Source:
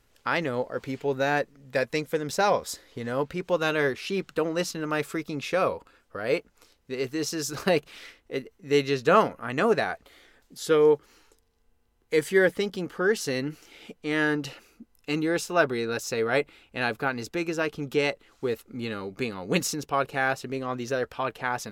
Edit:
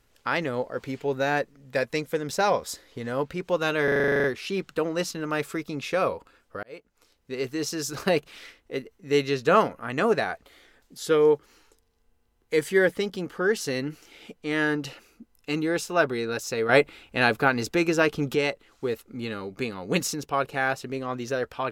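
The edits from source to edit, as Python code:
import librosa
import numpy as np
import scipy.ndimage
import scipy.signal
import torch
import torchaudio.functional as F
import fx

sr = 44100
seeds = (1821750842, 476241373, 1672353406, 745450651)

y = fx.edit(x, sr, fx.stutter(start_s=3.84, slice_s=0.04, count=11),
    fx.fade_in_span(start_s=6.23, length_s=0.73),
    fx.clip_gain(start_s=16.29, length_s=1.66, db=6.0), tone=tone)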